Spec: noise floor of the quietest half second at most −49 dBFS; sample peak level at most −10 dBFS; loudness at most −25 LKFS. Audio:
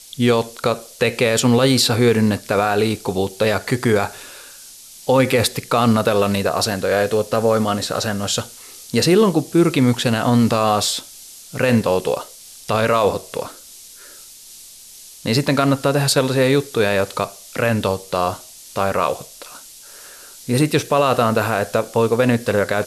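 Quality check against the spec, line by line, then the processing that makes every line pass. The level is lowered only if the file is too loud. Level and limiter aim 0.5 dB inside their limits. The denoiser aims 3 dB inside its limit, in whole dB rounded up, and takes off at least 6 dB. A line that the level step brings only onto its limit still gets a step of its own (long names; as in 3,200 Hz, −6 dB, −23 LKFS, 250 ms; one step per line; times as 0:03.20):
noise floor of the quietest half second −41 dBFS: out of spec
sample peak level −5.0 dBFS: out of spec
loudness −18.0 LKFS: out of spec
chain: broadband denoise 6 dB, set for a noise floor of −41 dBFS
level −7.5 dB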